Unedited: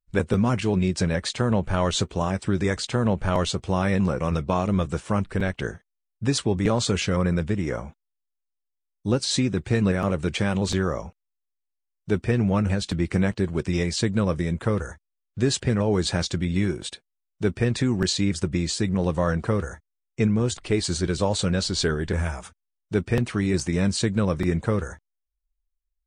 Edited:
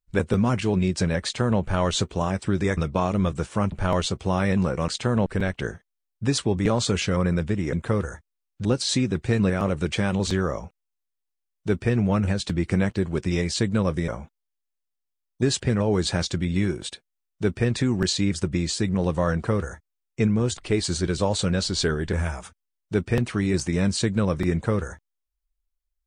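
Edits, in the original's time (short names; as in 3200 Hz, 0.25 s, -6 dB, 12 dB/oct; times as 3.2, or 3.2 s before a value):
2.77–3.15 swap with 4.31–5.26
7.73–9.07 swap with 14.5–15.42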